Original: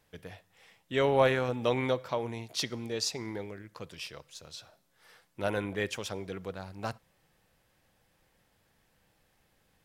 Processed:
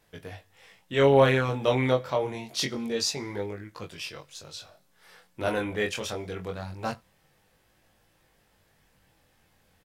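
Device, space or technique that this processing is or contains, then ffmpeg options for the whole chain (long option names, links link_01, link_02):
double-tracked vocal: -filter_complex "[0:a]asplit=2[link_01][link_02];[link_02]adelay=22,volume=-11dB[link_03];[link_01][link_03]amix=inputs=2:normalize=0,flanger=delay=19:depth=4.6:speed=0.25,volume=7dB"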